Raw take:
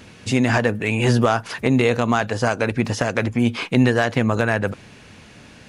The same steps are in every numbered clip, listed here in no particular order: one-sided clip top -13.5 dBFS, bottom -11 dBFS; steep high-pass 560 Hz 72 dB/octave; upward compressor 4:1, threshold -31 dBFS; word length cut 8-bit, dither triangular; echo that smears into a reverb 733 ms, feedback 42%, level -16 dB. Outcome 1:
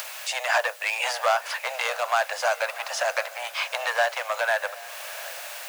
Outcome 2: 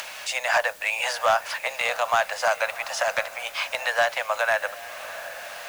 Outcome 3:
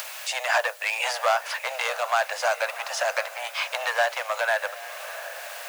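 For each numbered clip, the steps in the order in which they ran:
one-sided clip > word length cut > steep high-pass > upward compressor > echo that smears into a reverb; steep high-pass > one-sided clip > echo that smears into a reverb > upward compressor > word length cut; echo that smears into a reverb > one-sided clip > word length cut > steep high-pass > upward compressor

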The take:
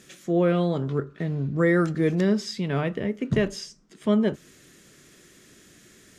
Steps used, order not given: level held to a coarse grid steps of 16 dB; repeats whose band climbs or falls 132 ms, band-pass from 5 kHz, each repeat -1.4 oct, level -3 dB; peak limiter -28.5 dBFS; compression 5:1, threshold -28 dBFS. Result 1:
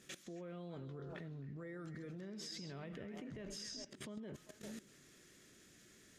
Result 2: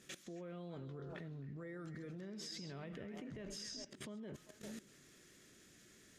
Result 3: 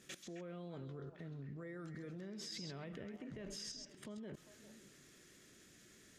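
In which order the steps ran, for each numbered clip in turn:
peak limiter > repeats whose band climbs or falls > level held to a coarse grid > compression; peak limiter > compression > repeats whose band climbs or falls > level held to a coarse grid; compression > peak limiter > level held to a coarse grid > repeats whose band climbs or falls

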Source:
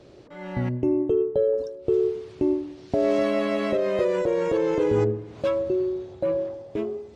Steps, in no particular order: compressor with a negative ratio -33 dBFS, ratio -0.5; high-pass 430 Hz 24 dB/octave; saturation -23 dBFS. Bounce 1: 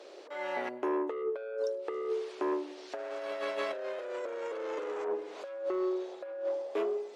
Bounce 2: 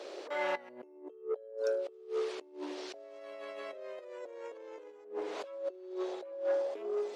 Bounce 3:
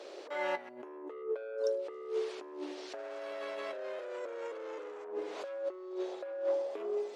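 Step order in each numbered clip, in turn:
saturation > high-pass > compressor with a negative ratio; compressor with a negative ratio > saturation > high-pass; saturation > compressor with a negative ratio > high-pass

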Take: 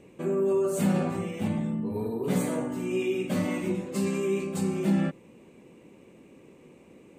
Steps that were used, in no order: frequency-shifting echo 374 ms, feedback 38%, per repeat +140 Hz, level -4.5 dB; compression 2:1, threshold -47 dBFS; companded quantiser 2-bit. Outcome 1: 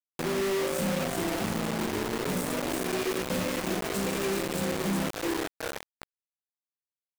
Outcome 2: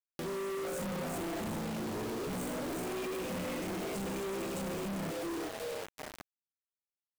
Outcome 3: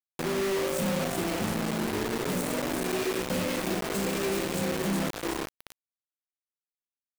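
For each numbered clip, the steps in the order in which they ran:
frequency-shifting echo > compression > companded quantiser; frequency-shifting echo > companded quantiser > compression; compression > frequency-shifting echo > companded quantiser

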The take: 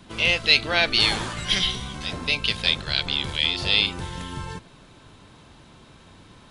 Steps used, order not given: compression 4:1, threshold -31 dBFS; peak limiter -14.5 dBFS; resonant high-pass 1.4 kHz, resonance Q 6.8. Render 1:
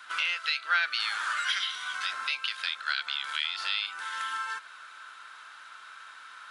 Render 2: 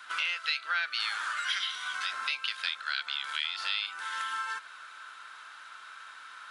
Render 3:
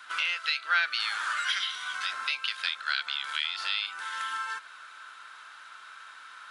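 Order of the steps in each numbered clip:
compression > resonant high-pass > peak limiter; resonant high-pass > compression > peak limiter; compression > peak limiter > resonant high-pass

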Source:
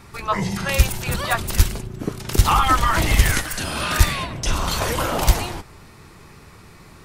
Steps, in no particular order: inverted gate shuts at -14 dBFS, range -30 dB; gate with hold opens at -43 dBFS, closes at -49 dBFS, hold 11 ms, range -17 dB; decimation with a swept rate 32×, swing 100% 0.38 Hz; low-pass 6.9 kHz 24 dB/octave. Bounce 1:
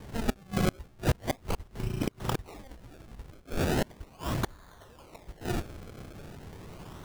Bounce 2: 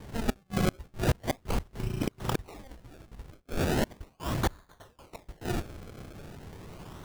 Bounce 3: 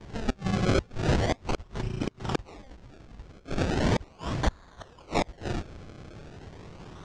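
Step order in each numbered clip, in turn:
gate with hold > inverted gate > low-pass > decimation with a swept rate; low-pass > inverted gate > decimation with a swept rate > gate with hold; decimation with a swept rate > gate with hold > inverted gate > low-pass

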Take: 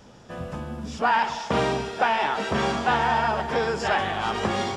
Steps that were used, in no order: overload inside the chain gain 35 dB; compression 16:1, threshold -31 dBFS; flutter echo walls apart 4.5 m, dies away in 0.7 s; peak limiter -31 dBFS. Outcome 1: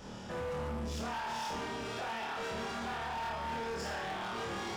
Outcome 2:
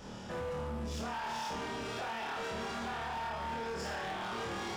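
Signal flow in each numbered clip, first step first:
compression > peak limiter > flutter echo > overload inside the chain; peak limiter > flutter echo > compression > overload inside the chain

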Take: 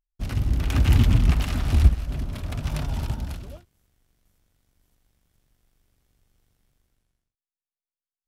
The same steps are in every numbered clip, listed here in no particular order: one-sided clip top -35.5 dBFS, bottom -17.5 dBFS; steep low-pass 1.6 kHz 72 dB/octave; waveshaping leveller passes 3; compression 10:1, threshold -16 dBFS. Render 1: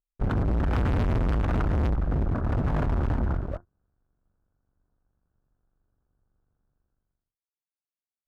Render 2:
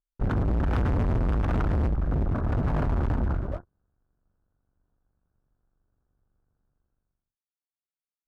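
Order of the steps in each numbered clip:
waveshaping leveller > steep low-pass > one-sided clip > compression; compression > waveshaping leveller > steep low-pass > one-sided clip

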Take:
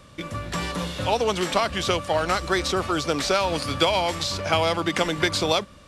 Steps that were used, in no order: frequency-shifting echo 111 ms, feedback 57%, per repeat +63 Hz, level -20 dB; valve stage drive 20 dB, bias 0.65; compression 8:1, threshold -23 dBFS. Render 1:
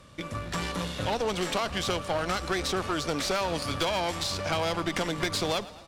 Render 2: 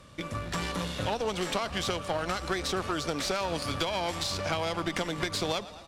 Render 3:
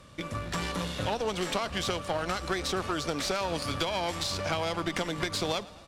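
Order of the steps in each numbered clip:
valve stage > frequency-shifting echo > compression; frequency-shifting echo > compression > valve stage; compression > valve stage > frequency-shifting echo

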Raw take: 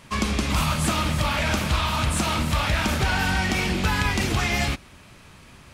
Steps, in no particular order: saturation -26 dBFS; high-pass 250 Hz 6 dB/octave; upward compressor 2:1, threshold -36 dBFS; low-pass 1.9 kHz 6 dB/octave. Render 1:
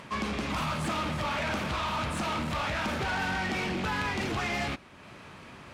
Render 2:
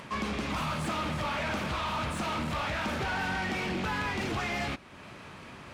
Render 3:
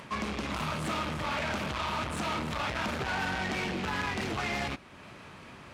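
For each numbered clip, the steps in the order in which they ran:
high-pass > upward compressor > low-pass > saturation; high-pass > saturation > low-pass > upward compressor; low-pass > saturation > upward compressor > high-pass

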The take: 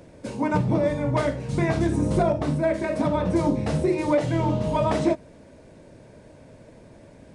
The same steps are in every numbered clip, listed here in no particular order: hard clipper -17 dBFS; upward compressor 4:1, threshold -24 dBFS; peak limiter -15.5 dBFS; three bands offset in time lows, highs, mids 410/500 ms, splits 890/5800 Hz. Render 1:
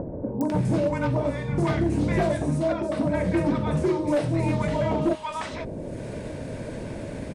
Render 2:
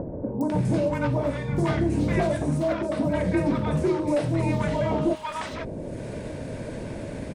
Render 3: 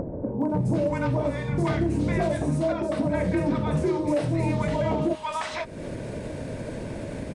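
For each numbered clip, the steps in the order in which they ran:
upward compressor > three bands offset in time > hard clipper > peak limiter; upward compressor > hard clipper > peak limiter > three bands offset in time; three bands offset in time > upward compressor > peak limiter > hard clipper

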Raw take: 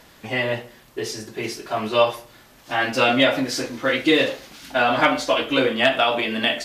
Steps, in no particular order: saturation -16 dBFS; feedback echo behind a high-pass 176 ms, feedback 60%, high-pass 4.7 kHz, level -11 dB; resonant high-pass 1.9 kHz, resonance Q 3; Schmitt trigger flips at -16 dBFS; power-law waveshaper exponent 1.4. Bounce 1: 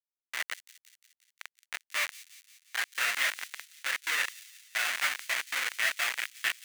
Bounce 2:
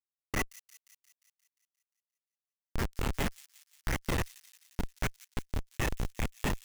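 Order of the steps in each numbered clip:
Schmitt trigger > resonant high-pass > saturation > power-law waveshaper > feedback echo behind a high-pass; saturation > resonant high-pass > power-law waveshaper > Schmitt trigger > feedback echo behind a high-pass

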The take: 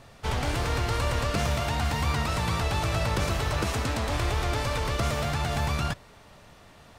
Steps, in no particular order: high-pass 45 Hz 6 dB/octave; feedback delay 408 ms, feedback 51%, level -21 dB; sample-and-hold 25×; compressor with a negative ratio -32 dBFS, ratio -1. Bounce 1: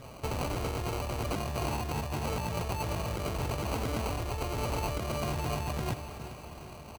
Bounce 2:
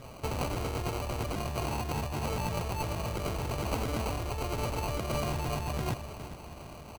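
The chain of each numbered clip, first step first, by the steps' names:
sample-and-hold > feedback delay > compressor with a negative ratio > high-pass; feedback delay > compressor with a negative ratio > high-pass > sample-and-hold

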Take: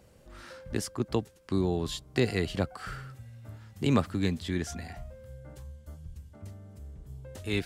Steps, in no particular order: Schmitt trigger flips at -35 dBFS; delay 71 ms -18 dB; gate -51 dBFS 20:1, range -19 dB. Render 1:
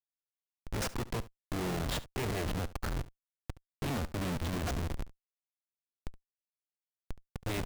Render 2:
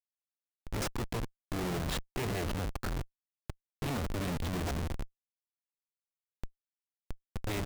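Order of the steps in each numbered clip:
gate > Schmitt trigger > delay; gate > delay > Schmitt trigger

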